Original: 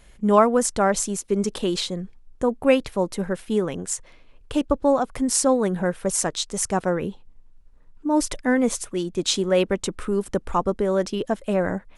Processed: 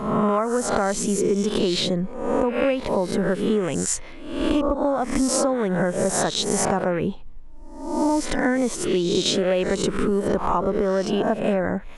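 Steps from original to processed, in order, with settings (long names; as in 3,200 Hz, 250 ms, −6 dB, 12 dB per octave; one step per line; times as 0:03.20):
peak hold with a rise ahead of every peak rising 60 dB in 0.70 s
high-shelf EQ 5,400 Hz −10 dB
downward compressor 12 to 1, threshold −26 dBFS, peak gain reduction 17 dB
level +8.5 dB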